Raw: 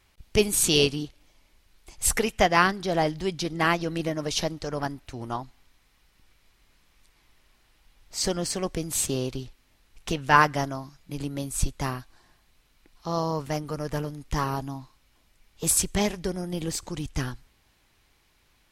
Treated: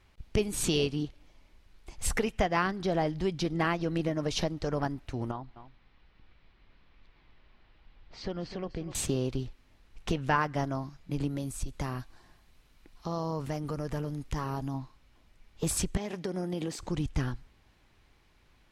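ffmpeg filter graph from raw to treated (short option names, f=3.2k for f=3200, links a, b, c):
-filter_complex "[0:a]asettb=1/sr,asplit=3[a][b][c];[a]atrim=end=5.314[d];[b]atrim=start=5.31:end=8.95,asetpts=PTS-STARTPTS,afade=t=in:d=0.004:c=qsin,afade=t=out:st=3.636:d=0.004:c=qsin,lowpass=f=4.3k:w=0.5412,lowpass=f=4.3k:w=1.3066,acompressor=threshold=-49dB:ratio=1.5:attack=3.2:release=140:knee=1:detection=peak,aecho=1:1:250:0.237,atrim=end_sample=160524[e];[c]atrim=start=8.946[f];[d][e]acrossfade=d=0.004:c1=hsin:c2=qsin[g];[g][f]acrossfade=d=0.004:c1=qsin:c2=hsin,asettb=1/sr,asplit=3[h][i][j];[h]atrim=end=11.294[k];[i]atrim=start=11.29:end=14.74,asetpts=PTS-STARTPTS,afade=t=in:d=0.004:c=qsin,afade=t=out:st=3.446:d=0.004:c=qsin,highshelf=f=6.2k:g=7.5,acompressor=threshold=-32dB:ratio=3:attack=3.2:release=140:knee=1:detection=peak[l];[j]atrim=start=14.736[m];[k][l]acrossfade=d=0.004:c1=hsin:c2=qsin[n];[n][m]acrossfade=d=0.004:c1=qsin:c2=hsin,asettb=1/sr,asplit=3[o][p][q];[o]atrim=end=15.974[r];[p]atrim=start=15.97:end=16.79,asetpts=PTS-STARTPTS,afade=t=in:d=0.004:c=qsin,afade=t=out:st=0.816:d=0.004:c=qsin,highpass=200,acompressor=threshold=-30dB:ratio=12:attack=3.2:release=140:knee=1:detection=peak[s];[q]atrim=start=16.786[t];[r][s]acrossfade=d=0.004:c1=hsin:c2=qsin[u];[u][t]acrossfade=d=0.004:c1=qsin:c2=hsin,lowpass=f=3.2k:p=1,lowshelf=f=410:g=3.5,acompressor=threshold=-26dB:ratio=3"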